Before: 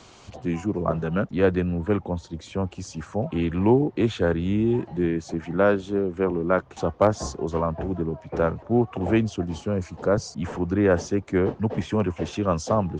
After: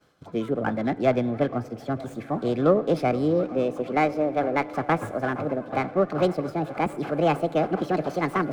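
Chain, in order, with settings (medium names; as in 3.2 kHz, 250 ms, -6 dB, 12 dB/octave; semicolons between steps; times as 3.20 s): gliding tape speed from 131% -> 174%; expander -38 dBFS; treble shelf 4.8 kHz -10.5 dB; reverse; upward compressor, threshold -29 dBFS; reverse; comb of notches 930 Hz; on a send: feedback echo behind a band-pass 465 ms, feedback 83%, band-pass 950 Hz, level -18.5 dB; on the sum: FDN reverb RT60 2.3 s, low-frequency decay 1.55×, high-frequency decay 0.8×, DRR 17.5 dB; sliding maximum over 3 samples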